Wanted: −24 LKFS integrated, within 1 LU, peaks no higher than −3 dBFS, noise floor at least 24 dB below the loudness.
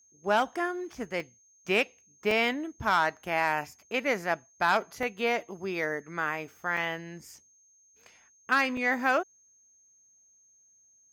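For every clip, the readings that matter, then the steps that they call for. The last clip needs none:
number of dropouts 5; longest dropout 2.2 ms; interfering tone 6,400 Hz; level of the tone −60 dBFS; integrated loudness −29.0 LKFS; sample peak −13.5 dBFS; target loudness −24.0 LKFS
→ repair the gap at 0:01.20/0:02.31/0:05.03/0:06.77/0:08.77, 2.2 ms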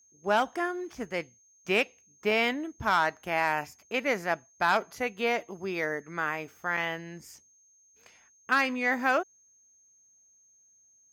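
number of dropouts 0; interfering tone 6,400 Hz; level of the tone −60 dBFS
→ notch filter 6,400 Hz, Q 30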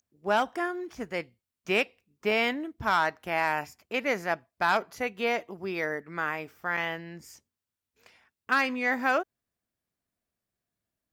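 interfering tone none found; integrated loudness −29.0 LKFS; sample peak −13.5 dBFS; target loudness −24.0 LKFS
→ level +5 dB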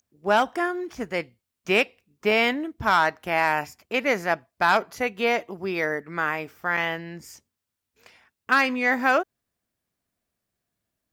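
integrated loudness −24.0 LKFS; sample peak −8.5 dBFS; background noise floor −84 dBFS

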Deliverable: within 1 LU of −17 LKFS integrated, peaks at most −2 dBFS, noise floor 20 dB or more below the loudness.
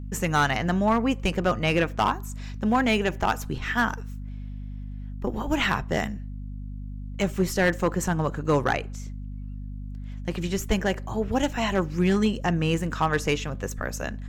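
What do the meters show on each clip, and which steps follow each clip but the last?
share of clipped samples 0.6%; peaks flattened at −14.5 dBFS; mains hum 50 Hz; hum harmonics up to 250 Hz; level of the hum −33 dBFS; integrated loudness −25.5 LKFS; sample peak −14.5 dBFS; target loudness −17.0 LKFS
→ clipped peaks rebuilt −14.5 dBFS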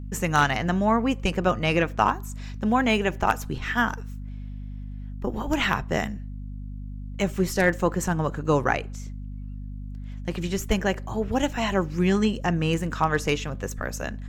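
share of clipped samples 0.0%; mains hum 50 Hz; hum harmonics up to 250 Hz; level of the hum −32 dBFS
→ mains-hum notches 50/100/150/200/250 Hz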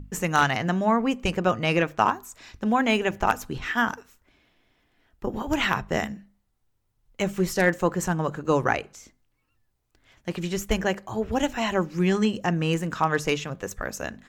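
mains hum none found; integrated loudness −25.5 LKFS; sample peak −5.5 dBFS; target loudness −17.0 LKFS
→ level +8.5 dB
brickwall limiter −2 dBFS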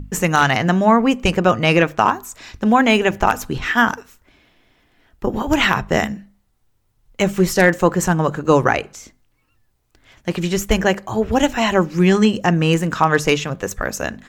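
integrated loudness −17.5 LKFS; sample peak −2.0 dBFS; background noise floor −63 dBFS

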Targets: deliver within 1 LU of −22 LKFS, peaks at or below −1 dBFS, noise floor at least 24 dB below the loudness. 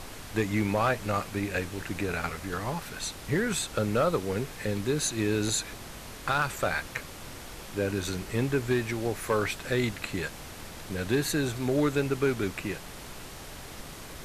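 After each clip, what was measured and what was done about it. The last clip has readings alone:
share of clipped samples 0.2%; peaks flattened at −17.5 dBFS; background noise floor −43 dBFS; target noise floor −54 dBFS; integrated loudness −30.0 LKFS; sample peak −17.5 dBFS; target loudness −22.0 LKFS
→ clipped peaks rebuilt −17.5 dBFS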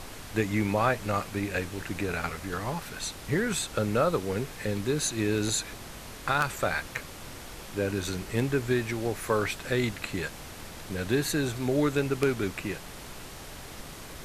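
share of clipped samples 0.0%; background noise floor −43 dBFS; target noise floor −54 dBFS
→ noise reduction from a noise print 11 dB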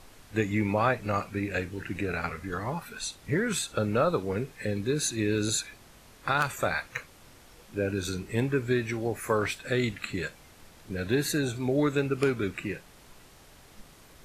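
background noise floor −54 dBFS; integrated loudness −29.5 LKFS; sample peak −9.0 dBFS; target loudness −22.0 LKFS
→ level +7.5 dB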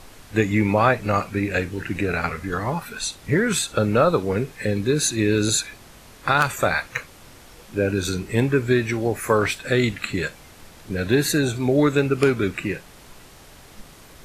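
integrated loudness −22.0 LKFS; sample peak −1.5 dBFS; background noise floor −47 dBFS

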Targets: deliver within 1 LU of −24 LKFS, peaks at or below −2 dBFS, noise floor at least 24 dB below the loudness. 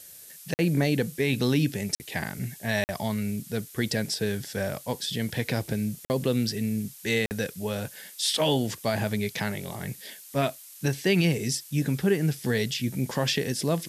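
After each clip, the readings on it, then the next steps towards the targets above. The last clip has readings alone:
number of dropouts 5; longest dropout 49 ms; background noise floor −47 dBFS; target noise floor −52 dBFS; integrated loudness −28.0 LKFS; sample peak −13.0 dBFS; target loudness −24.0 LKFS
→ repair the gap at 0:00.54/0:01.95/0:02.84/0:06.05/0:07.26, 49 ms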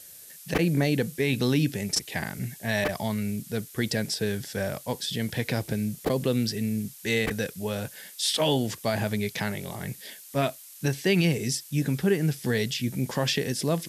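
number of dropouts 0; background noise floor −47 dBFS; target noise floor −52 dBFS
→ noise reduction from a noise print 6 dB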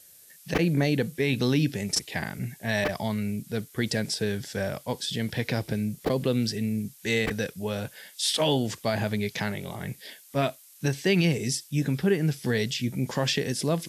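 background noise floor −53 dBFS; integrated loudness −27.5 LKFS; sample peak −11.0 dBFS; target loudness −24.0 LKFS
→ level +3.5 dB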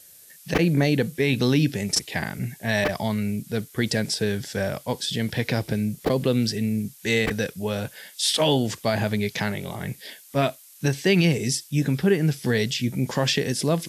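integrated loudness −24.0 LKFS; sample peak −7.5 dBFS; background noise floor −50 dBFS

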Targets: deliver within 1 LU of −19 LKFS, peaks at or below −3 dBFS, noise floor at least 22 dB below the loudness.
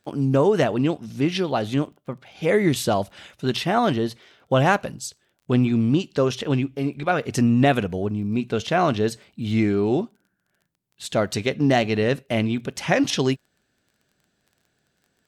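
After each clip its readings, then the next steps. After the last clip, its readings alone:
crackle rate 23 per second; integrated loudness −22.5 LKFS; sample peak −5.0 dBFS; target loudness −19.0 LKFS
→ click removal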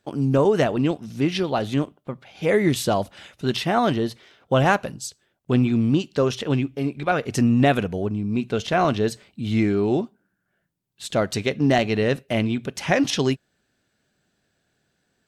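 crackle rate 0 per second; integrated loudness −22.5 LKFS; sample peak −5.0 dBFS; target loudness −19.0 LKFS
→ level +3.5 dB
brickwall limiter −3 dBFS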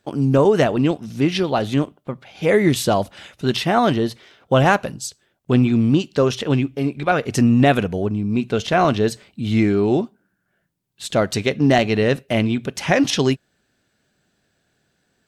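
integrated loudness −19.0 LKFS; sample peak −3.0 dBFS; background noise floor −70 dBFS

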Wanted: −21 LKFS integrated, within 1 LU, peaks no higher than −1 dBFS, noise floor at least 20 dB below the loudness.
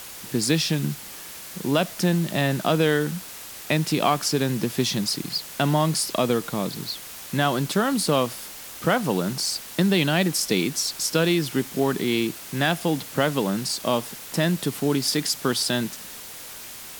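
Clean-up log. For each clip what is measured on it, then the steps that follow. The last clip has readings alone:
background noise floor −39 dBFS; target noise floor −44 dBFS; integrated loudness −24.0 LKFS; sample peak −7.0 dBFS; target loudness −21.0 LKFS
→ broadband denoise 6 dB, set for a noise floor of −39 dBFS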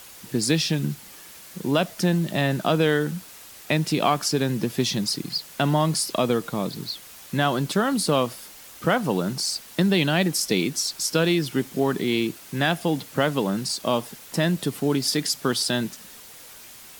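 background noise floor −45 dBFS; integrated loudness −24.0 LKFS; sample peak −7.0 dBFS; target loudness −21.0 LKFS
→ level +3 dB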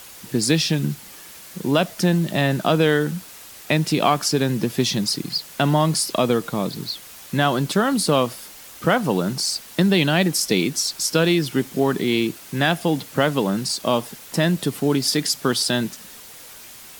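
integrated loudness −21.0 LKFS; sample peak −4.0 dBFS; background noise floor −42 dBFS

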